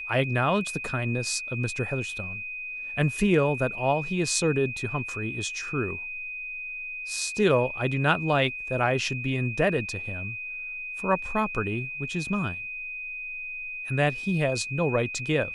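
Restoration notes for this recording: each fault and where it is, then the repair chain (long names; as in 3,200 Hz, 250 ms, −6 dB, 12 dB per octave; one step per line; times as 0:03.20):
whistle 2,500 Hz −33 dBFS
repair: notch filter 2,500 Hz, Q 30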